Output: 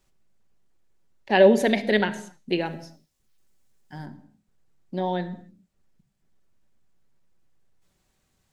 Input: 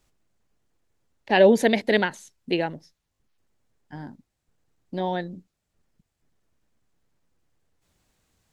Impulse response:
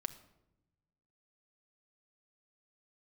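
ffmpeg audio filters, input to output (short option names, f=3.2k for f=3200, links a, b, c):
-filter_complex "[0:a]asettb=1/sr,asplit=3[a][b][c];[a]atrim=end=2.654[d];[b]atrim=start=2.65:end=4.06,asetpts=PTS-STARTPTS,afade=t=in:d=0.004:c=qsin,afade=t=out:st=1.406:d=0.004:c=qsin,highshelf=f=3.8k:g=11.5[e];[c]atrim=start=4.056[f];[d][e]acrossfade=d=0.004:c1=hsin:c2=qsin[g];[g][f]acrossfade=d=0.004:c1=qsin:c2=hsin[h];[1:a]atrim=start_sample=2205,afade=t=out:st=0.34:d=0.01,atrim=end_sample=15435[i];[h][i]afir=irnorm=-1:irlink=0"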